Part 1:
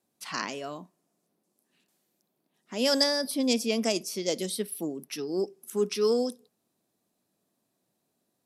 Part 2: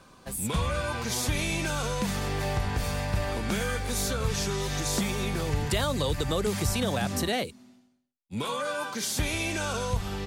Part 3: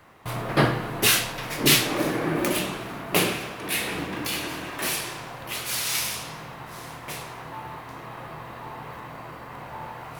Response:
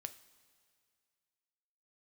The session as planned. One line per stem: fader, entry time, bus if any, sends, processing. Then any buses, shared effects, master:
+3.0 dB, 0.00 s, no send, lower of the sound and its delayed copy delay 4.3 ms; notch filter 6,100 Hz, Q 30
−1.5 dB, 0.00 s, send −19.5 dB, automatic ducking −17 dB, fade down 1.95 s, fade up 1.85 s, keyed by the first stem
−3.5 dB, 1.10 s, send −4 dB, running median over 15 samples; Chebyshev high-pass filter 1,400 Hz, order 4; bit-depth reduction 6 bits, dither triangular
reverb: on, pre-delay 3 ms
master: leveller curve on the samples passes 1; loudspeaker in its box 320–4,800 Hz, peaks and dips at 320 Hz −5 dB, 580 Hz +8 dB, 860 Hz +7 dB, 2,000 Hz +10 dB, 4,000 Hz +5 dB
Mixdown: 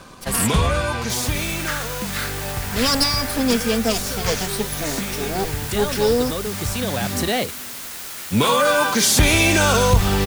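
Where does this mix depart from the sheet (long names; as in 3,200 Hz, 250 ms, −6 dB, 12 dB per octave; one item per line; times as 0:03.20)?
stem 2 −1.5 dB → +10.5 dB
master: missing loudspeaker in its box 320–4,800 Hz, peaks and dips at 320 Hz −5 dB, 580 Hz +8 dB, 860 Hz +7 dB, 2,000 Hz +10 dB, 4,000 Hz +5 dB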